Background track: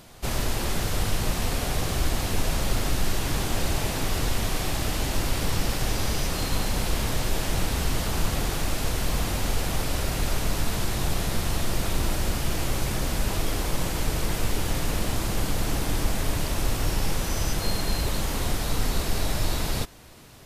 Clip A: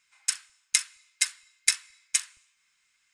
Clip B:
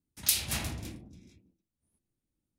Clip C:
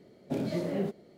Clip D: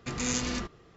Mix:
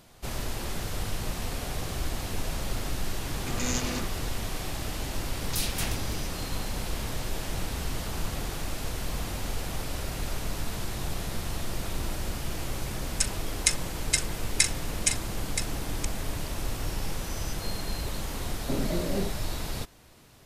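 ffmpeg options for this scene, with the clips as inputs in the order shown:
ffmpeg -i bed.wav -i cue0.wav -i cue1.wav -i cue2.wav -i cue3.wav -filter_complex "[0:a]volume=-6.5dB[link_01];[2:a]alimiter=level_in=18dB:limit=-1dB:release=50:level=0:latency=1[link_02];[1:a]aecho=1:1:974:0.376[link_03];[3:a]lowpass=10000[link_04];[4:a]atrim=end=0.96,asetpts=PTS-STARTPTS,volume=-1dB,afade=type=in:duration=0.004:curve=hsin,afade=type=out:start_time=0.956:duration=0.004:curve=hsin,adelay=3400[link_05];[link_02]atrim=end=2.58,asetpts=PTS-STARTPTS,volume=-17.5dB,afade=type=in:duration=0.004:curve=hsin,afade=type=out:start_time=2.576:duration=0.004:curve=hsin,adelay=5270[link_06];[link_03]atrim=end=3.13,asetpts=PTS-STARTPTS,volume=-0.5dB,afade=type=in:duration=0.004:curve=hsin,afade=type=out:start_time=3.126:duration=0.004:curve=hsin,adelay=12920[link_07];[link_04]atrim=end=1.17,asetpts=PTS-STARTPTS,afade=type=in:duration=0.004:curve=hsin,afade=type=out:start_time=1.166:duration=0.004:curve=hsin,adelay=18380[link_08];[link_01][link_05][link_06][link_07][link_08]amix=inputs=5:normalize=0" out.wav

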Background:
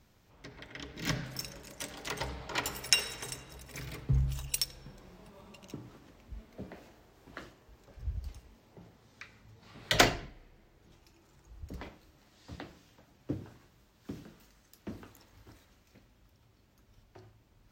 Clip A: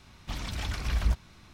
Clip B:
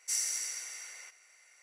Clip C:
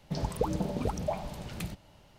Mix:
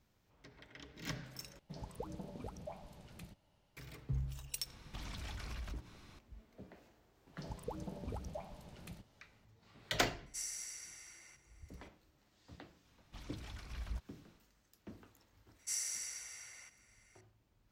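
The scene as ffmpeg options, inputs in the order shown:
ffmpeg -i bed.wav -i cue0.wav -i cue1.wav -i cue2.wav -filter_complex "[3:a]asplit=2[link_01][link_02];[1:a]asplit=2[link_03][link_04];[2:a]asplit=2[link_05][link_06];[0:a]volume=-9.5dB[link_07];[link_03]acompressor=threshold=-37dB:ratio=6:attack=3.2:release=140:knee=1:detection=peak[link_08];[link_07]asplit=2[link_09][link_10];[link_09]atrim=end=1.594[link_11];[link_01]atrim=end=2.18,asetpts=PTS-STARTPTS,volume=-15.5dB[link_12];[link_10]atrim=start=3.766[link_13];[link_08]atrim=end=1.53,asetpts=PTS-STARTPTS,volume=-4.5dB,afade=type=in:duration=0.004:curve=hsin,afade=type=out:start_time=1.526:duration=0.004:curve=hsin,adelay=4660[link_14];[link_02]atrim=end=2.18,asetpts=PTS-STARTPTS,volume=-14dB,afade=type=in:duration=0.004:curve=hsin,afade=type=out:start_time=2.176:duration=0.004:curve=hsin,adelay=7270[link_15];[link_05]atrim=end=1.62,asetpts=PTS-STARTPTS,volume=-10.5dB,afade=type=in:duration=0.004:curve=hsin,afade=type=out:start_time=1.616:duration=0.004:curve=hsin,adelay=452466S[link_16];[link_04]atrim=end=1.53,asetpts=PTS-STARTPTS,volume=-16.5dB,afade=type=in:duration=0.004:curve=hsin,afade=type=out:start_time=1.526:duration=0.004:curve=hsin,adelay=12850[link_17];[link_06]atrim=end=1.62,asetpts=PTS-STARTPTS,volume=-6.5dB,afade=type=in:duration=0.004:curve=hsin,afade=type=out:start_time=1.616:duration=0.004:curve=hsin,adelay=15590[link_18];[link_11][link_12]acrossfade=duration=0.004:curve1=hsin:curve2=hsin[link_19];[link_19][link_13]acrossfade=duration=0.004:curve1=hsin:curve2=hsin[link_20];[link_20][link_14][link_15][link_16][link_17][link_18]amix=inputs=6:normalize=0" out.wav

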